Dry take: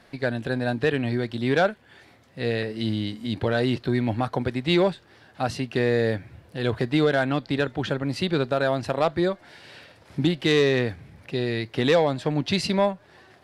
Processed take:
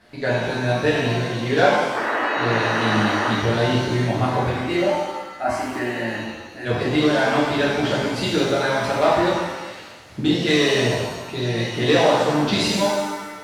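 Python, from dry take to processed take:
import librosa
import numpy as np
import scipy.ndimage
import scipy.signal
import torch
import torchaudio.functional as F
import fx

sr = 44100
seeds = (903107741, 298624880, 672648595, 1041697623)

y = fx.spec_paint(x, sr, seeds[0], shape='noise', start_s=1.95, length_s=1.36, low_hz=220.0, high_hz=2000.0, level_db=-27.0)
y = fx.fixed_phaser(y, sr, hz=690.0, stages=8, at=(4.54, 6.65), fade=0.02)
y = fx.hpss(y, sr, part='harmonic', gain_db=-6)
y = fx.rev_shimmer(y, sr, seeds[1], rt60_s=1.2, semitones=7, shimmer_db=-8, drr_db=-7.0)
y = F.gain(torch.from_numpy(y), -1.0).numpy()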